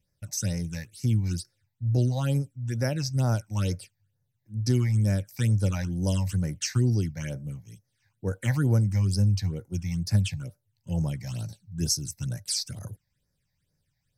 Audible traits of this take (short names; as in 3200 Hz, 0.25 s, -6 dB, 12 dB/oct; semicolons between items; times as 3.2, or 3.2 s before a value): phasing stages 8, 2.2 Hz, lowest notch 380–3200 Hz